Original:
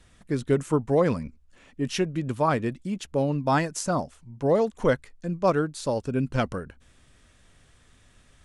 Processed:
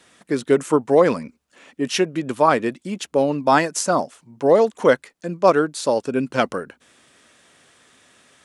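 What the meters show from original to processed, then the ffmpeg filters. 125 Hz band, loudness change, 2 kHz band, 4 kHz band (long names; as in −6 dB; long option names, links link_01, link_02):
−3.5 dB, +6.5 dB, +8.0 dB, +8.0 dB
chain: -af "highpass=280,volume=8dB"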